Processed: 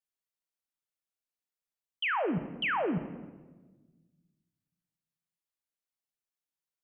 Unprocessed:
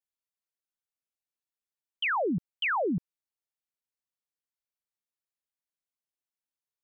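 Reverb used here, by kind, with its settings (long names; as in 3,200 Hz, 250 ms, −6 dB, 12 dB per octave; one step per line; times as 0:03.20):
rectangular room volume 910 cubic metres, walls mixed, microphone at 0.59 metres
level −2.5 dB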